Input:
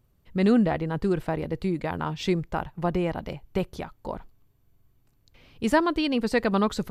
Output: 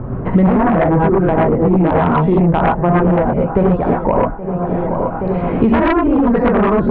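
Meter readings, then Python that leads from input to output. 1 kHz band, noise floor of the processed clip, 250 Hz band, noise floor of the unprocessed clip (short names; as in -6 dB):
+15.0 dB, -23 dBFS, +12.5 dB, -65 dBFS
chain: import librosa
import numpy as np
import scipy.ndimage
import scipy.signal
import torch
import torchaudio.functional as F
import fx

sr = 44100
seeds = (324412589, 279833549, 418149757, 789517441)

p1 = fx.over_compress(x, sr, threshold_db=-26.0, ratio=-0.5)
p2 = x + (p1 * 10.0 ** (-3.0 / 20.0))
p3 = fx.dereverb_blind(p2, sr, rt60_s=0.64)
p4 = scipy.signal.sosfilt(scipy.signal.butter(4, 1300.0, 'lowpass', fs=sr, output='sos'), p3)
p5 = p4 + fx.echo_feedback(p4, sr, ms=824, feedback_pct=50, wet_db=-20, dry=0)
p6 = fx.rev_gated(p5, sr, seeds[0], gate_ms=150, shape='rising', drr_db=-5.0)
p7 = fx.fold_sine(p6, sr, drive_db=10, ceiling_db=-2.0)
p8 = fx.band_squash(p7, sr, depth_pct=100)
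y = p8 * 10.0 ** (-6.5 / 20.0)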